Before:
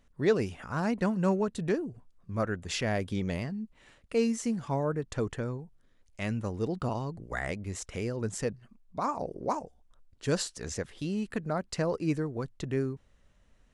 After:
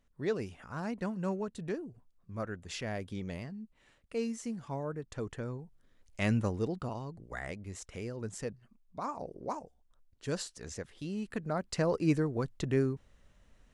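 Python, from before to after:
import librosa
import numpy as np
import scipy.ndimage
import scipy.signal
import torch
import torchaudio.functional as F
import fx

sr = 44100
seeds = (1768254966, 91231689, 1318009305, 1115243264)

y = fx.gain(x, sr, db=fx.line((5.16, -7.5), (6.36, 4.0), (6.88, -6.5), (10.95, -6.5), (12.06, 1.5)))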